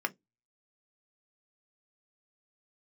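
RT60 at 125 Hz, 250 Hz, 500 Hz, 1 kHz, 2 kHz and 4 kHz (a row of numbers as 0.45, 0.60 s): 0.25, 0.20, 0.20, 0.10, 0.10, 0.15 s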